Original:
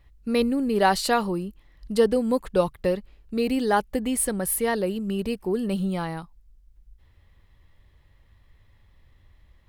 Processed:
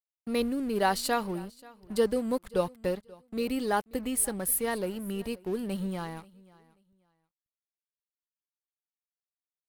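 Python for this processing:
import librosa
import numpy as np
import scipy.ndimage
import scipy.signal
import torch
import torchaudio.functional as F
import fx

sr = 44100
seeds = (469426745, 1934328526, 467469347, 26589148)

y = fx.high_shelf(x, sr, hz=11000.0, db=10.0)
y = np.sign(y) * np.maximum(np.abs(y) - 10.0 ** (-41.0 / 20.0), 0.0)
y = fx.echo_feedback(y, sr, ms=534, feedback_pct=22, wet_db=-23.0)
y = F.gain(torch.from_numpy(y), -5.5).numpy()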